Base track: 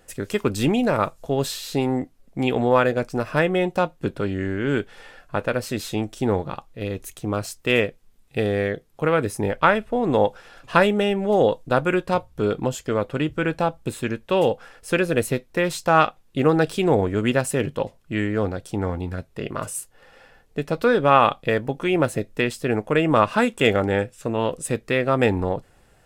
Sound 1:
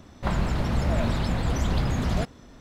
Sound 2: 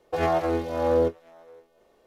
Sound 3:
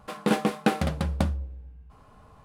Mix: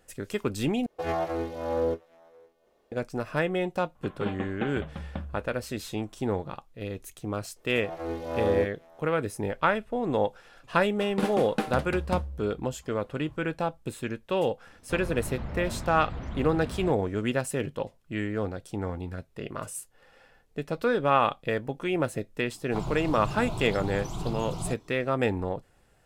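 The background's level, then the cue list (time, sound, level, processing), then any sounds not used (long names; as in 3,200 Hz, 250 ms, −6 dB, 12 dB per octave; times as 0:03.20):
base track −7 dB
0:00.86: overwrite with 2 −5.5 dB
0:03.95: mix in 3 −10.5 dB + downsampling to 8,000 Hz
0:07.56: mix in 2 −4 dB + volume swells 464 ms
0:10.92: mix in 3 −6 dB
0:14.67: mix in 1 −11 dB + treble cut that deepens with the level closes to 2,500 Hz, closed at −19.5 dBFS
0:22.49: mix in 1 −5 dB + phaser with its sweep stopped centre 350 Hz, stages 8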